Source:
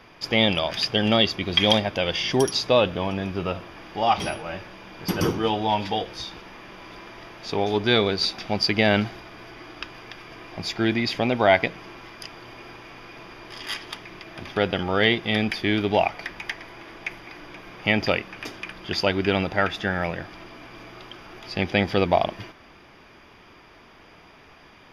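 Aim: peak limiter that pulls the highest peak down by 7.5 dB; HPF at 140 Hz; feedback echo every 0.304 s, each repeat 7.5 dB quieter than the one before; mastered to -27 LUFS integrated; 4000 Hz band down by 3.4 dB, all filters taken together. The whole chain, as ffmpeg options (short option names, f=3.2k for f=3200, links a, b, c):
-af "highpass=140,equalizer=f=4k:t=o:g=-4.5,alimiter=limit=-11.5dB:level=0:latency=1,aecho=1:1:304|608|912|1216|1520:0.422|0.177|0.0744|0.0312|0.0131,volume=-0.5dB"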